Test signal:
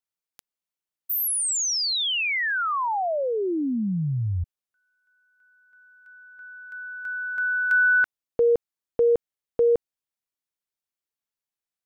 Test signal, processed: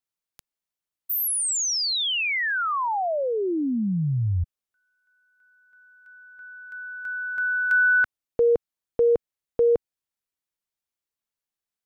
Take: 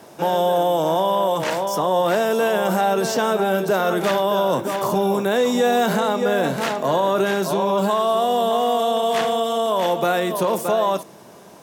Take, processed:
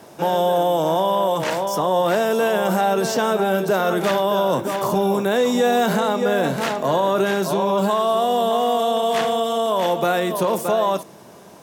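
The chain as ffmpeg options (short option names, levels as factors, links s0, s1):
-af "lowshelf=f=110:g=4"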